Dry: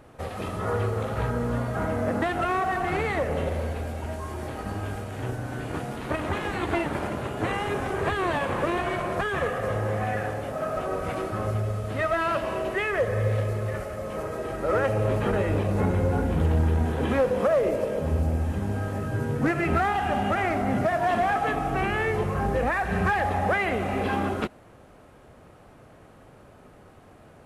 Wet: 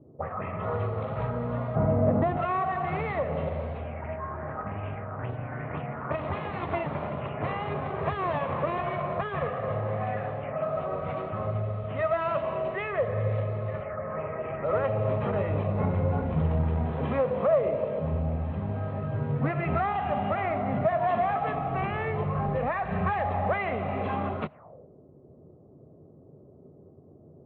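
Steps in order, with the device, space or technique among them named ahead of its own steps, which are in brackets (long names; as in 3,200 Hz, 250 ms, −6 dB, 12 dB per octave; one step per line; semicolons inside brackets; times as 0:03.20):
0:01.75–0:02.37: tilt shelving filter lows +8.5 dB
envelope filter bass rig (envelope-controlled low-pass 290–4,000 Hz up, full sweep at −26 dBFS; loudspeaker in its box 79–2,300 Hz, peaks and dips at 91 Hz +5 dB, 150 Hz +9 dB, 330 Hz −6 dB, 630 Hz +6 dB, 1,100 Hz +5 dB, 1,600 Hz −7 dB)
level −5 dB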